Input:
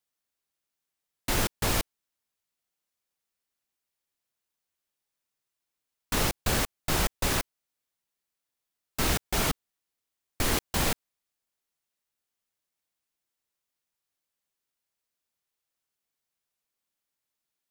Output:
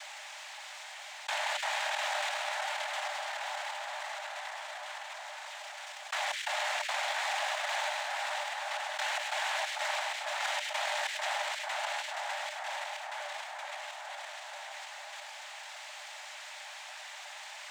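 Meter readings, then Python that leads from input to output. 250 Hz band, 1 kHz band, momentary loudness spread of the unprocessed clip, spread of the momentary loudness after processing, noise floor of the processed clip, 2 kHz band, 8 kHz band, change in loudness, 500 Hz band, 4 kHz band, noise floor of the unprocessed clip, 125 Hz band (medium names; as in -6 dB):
under -40 dB, +4.0 dB, 11 LU, 12 LU, -46 dBFS, +4.5 dB, -6.0 dB, -7.0 dB, -2.0 dB, +1.0 dB, under -85 dBFS, under -40 dB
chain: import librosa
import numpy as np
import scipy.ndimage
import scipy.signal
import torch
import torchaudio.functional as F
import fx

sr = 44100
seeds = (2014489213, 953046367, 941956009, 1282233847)

p1 = fx.reverse_delay_fb(x, sr, ms=237, feedback_pct=64, wet_db=-1)
p2 = fx.lowpass(p1, sr, hz=2300.0, slope=6)
p3 = fx.level_steps(p2, sr, step_db=11)
p4 = fx.noise_vocoder(p3, sr, seeds[0], bands=6)
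p5 = fx.power_curve(p4, sr, exponent=0.7)
p6 = scipy.signal.sosfilt(scipy.signal.cheby1(6, 6, 580.0, 'highpass', fs=sr, output='sos'), p5)
p7 = p6 + fx.echo_split(p6, sr, split_hz=1800.0, low_ms=444, high_ms=102, feedback_pct=52, wet_db=-11.5, dry=0)
p8 = fx.env_flatten(p7, sr, amount_pct=70)
y = p8 * 10.0 ** (3.0 / 20.0)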